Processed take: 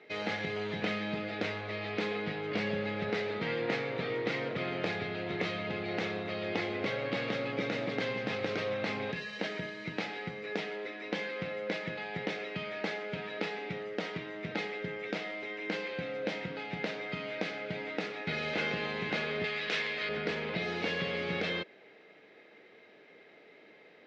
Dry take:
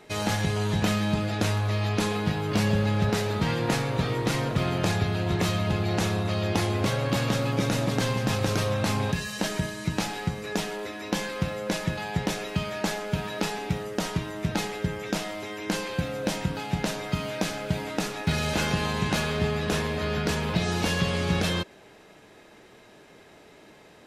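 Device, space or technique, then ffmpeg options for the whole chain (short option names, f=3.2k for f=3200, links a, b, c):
kitchen radio: -filter_complex "[0:a]asettb=1/sr,asplit=3[a][b][c];[a]atrim=end=19.444[d];[b]atrim=start=19.44:end=20.09,asetpts=PTS-STARTPTS,afade=t=in:d=0.004:c=qsin,afade=t=out:st=0.646:d=0.004:c=qsin,tiltshelf=f=1.1k:g=-8.5[e];[c]atrim=start=20.086[f];[d][e]acrossfade=d=0.004:c1=hsin:c2=qsin[g];[g][f]acrossfade=d=0.004:c1=qsin:c2=hsin,highpass=220,equalizer=f=470:t=q:w=4:g=6,equalizer=f=980:t=q:w=4:g=-6,equalizer=f=2.1k:t=q:w=4:g=9,lowpass=f=4.3k:w=0.5412,lowpass=f=4.3k:w=1.3066,volume=-7dB"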